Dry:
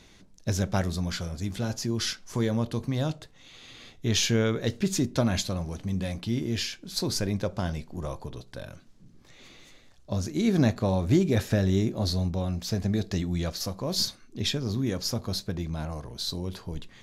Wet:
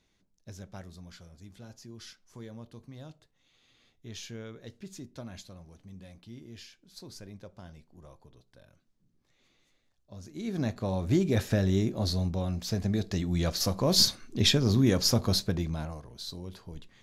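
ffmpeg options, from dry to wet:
-af "volume=1.78,afade=t=in:st=10.13:d=0.33:silence=0.446684,afade=t=in:st=10.46:d=0.91:silence=0.354813,afade=t=in:st=13.21:d=0.59:silence=0.446684,afade=t=out:st=15.27:d=0.75:silence=0.223872"

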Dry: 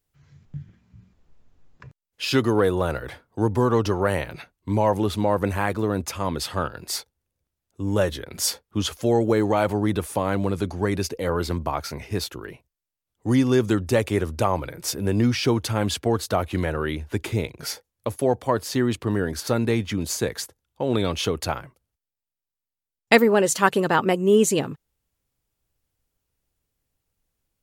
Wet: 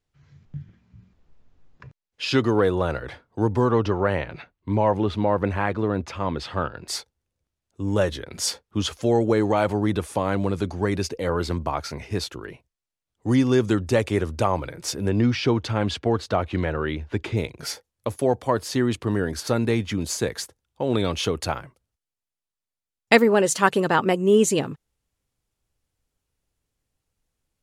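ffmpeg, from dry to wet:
-af "asetnsamples=n=441:p=0,asendcmd='3.71 lowpass f 3500;6.88 lowpass f 8700;15.09 lowpass f 4400;17.37 lowpass f 11000',lowpass=6100"

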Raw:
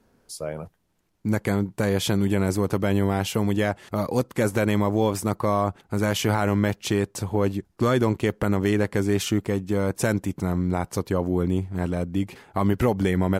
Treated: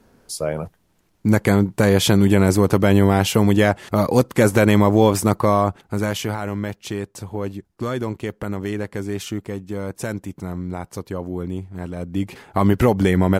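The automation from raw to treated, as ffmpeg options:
-af "volume=7.08,afade=t=out:st=5.25:d=1.12:silence=0.266073,afade=t=in:st=11.95:d=0.49:silence=0.334965"

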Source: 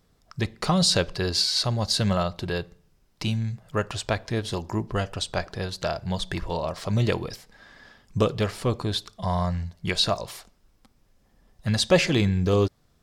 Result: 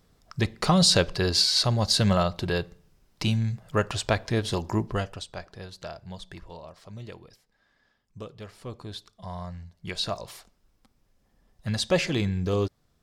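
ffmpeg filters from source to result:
-af "volume=5.62,afade=t=out:st=4.78:d=0.48:silence=0.251189,afade=t=out:st=5.8:d=1.17:silence=0.421697,afade=t=in:st=8.35:d=0.56:silence=0.473151,afade=t=in:st=9.65:d=0.66:silence=0.446684"

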